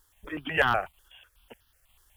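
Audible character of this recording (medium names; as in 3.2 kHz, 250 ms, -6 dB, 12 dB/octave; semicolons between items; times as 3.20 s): a quantiser's noise floor 12-bit, dither none; random-step tremolo 3.7 Hz; notches that jump at a steady rate 8.1 Hz 660–2300 Hz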